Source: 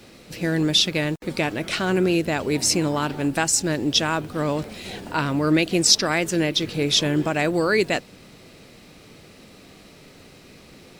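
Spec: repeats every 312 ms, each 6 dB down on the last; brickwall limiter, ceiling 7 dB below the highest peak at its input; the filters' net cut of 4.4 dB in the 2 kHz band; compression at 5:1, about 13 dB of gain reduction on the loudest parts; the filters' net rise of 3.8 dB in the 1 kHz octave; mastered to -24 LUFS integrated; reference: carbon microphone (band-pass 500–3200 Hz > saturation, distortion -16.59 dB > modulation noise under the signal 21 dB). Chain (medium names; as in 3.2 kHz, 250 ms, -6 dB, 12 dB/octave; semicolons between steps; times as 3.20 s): peaking EQ 1 kHz +7.5 dB; peaking EQ 2 kHz -8 dB; compression 5:1, threshold -28 dBFS; peak limiter -23 dBFS; band-pass 500–3200 Hz; feedback delay 312 ms, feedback 50%, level -6 dB; saturation -27.5 dBFS; modulation noise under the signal 21 dB; trim +14 dB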